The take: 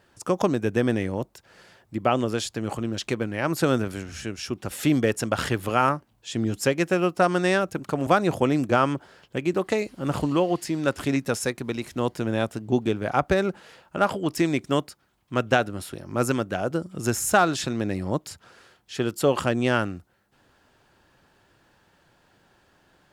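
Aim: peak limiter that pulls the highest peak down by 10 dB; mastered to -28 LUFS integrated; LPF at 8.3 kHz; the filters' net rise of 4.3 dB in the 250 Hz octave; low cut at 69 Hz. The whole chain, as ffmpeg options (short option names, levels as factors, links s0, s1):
-af "highpass=69,lowpass=8300,equalizer=f=250:t=o:g=5.5,volume=0.75,alimiter=limit=0.178:level=0:latency=1"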